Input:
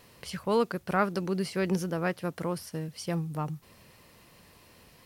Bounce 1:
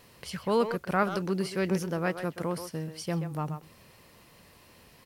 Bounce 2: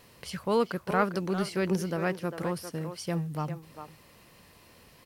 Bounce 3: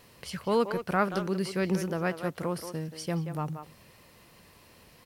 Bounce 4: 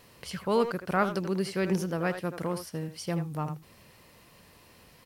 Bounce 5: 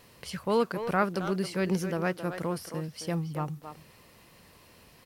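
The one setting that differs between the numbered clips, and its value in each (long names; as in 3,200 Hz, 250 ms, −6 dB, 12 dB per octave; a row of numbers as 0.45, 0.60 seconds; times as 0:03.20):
far-end echo of a speakerphone, delay time: 130, 400, 180, 80, 270 milliseconds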